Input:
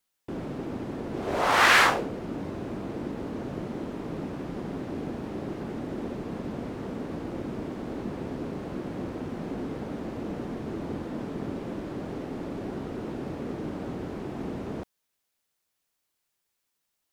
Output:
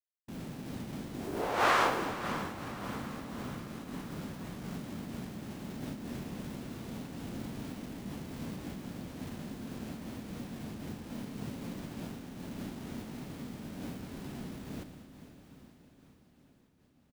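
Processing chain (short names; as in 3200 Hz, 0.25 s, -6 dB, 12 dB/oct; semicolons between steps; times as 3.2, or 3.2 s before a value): bit-crush 7-bit; feedback echo 0.113 s, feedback 59%, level -10.5 dB; formant shift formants -6 st; on a send: diffused feedback echo 0.534 s, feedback 59%, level -12 dB; on the sum: noise-modulated level, depth 60%; gain -5 dB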